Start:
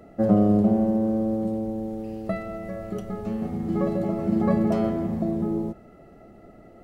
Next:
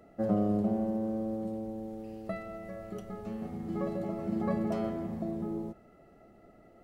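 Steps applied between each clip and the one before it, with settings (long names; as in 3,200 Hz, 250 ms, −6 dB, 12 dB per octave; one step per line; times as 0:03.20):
low-shelf EQ 480 Hz −4 dB
level −6.5 dB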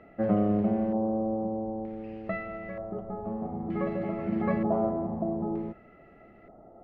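auto-filter low-pass square 0.54 Hz 880–2,300 Hz
level +3 dB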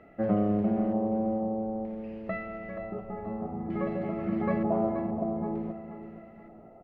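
repeating echo 477 ms, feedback 35%, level −11 dB
level −1 dB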